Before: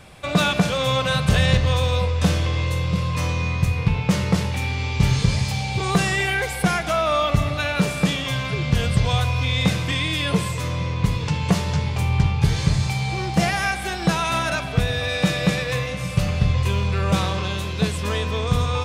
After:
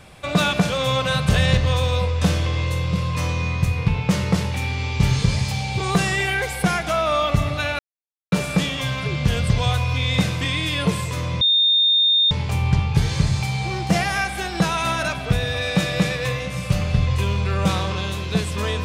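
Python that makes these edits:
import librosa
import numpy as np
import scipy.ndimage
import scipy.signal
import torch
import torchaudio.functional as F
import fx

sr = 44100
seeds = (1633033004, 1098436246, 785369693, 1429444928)

y = fx.edit(x, sr, fx.insert_silence(at_s=7.79, length_s=0.53),
    fx.bleep(start_s=10.88, length_s=0.9, hz=3650.0, db=-13.5), tone=tone)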